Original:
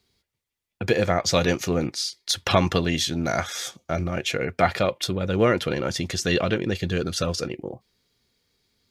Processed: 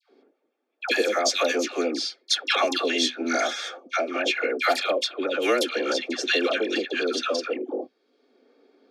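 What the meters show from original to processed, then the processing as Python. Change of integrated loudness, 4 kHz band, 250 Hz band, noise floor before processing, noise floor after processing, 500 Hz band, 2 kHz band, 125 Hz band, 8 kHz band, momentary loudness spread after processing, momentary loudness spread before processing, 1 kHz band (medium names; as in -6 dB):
-0.5 dB, +2.0 dB, -3.5 dB, -84 dBFS, -73 dBFS, -0.5 dB, +3.0 dB, under -30 dB, -1.5 dB, 7 LU, 9 LU, -0.5 dB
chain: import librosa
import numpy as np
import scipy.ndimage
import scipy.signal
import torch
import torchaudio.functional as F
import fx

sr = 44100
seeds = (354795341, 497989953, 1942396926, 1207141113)

y = scipy.signal.sosfilt(scipy.signal.ellip(4, 1.0, 40, 260.0, 'highpass', fs=sr, output='sos'), x)
y = fx.env_lowpass(y, sr, base_hz=740.0, full_db=-18.5)
y = fx.high_shelf(y, sr, hz=3100.0, db=11.5)
y = fx.notch_comb(y, sr, f0_hz=980.0)
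y = fx.dispersion(y, sr, late='lows', ms=103.0, hz=1100.0)
y = fx.band_squash(y, sr, depth_pct=70)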